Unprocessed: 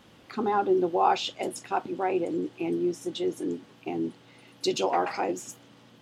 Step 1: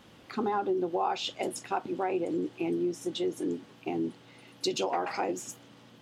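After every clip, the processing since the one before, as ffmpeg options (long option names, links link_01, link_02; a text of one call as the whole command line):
ffmpeg -i in.wav -af "acompressor=threshold=-26dB:ratio=5" out.wav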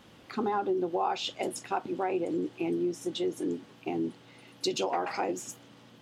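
ffmpeg -i in.wav -af anull out.wav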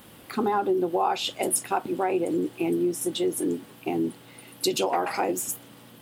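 ffmpeg -i in.wav -af "aexciter=amount=6.8:drive=4.2:freq=8600,volume=5dB" out.wav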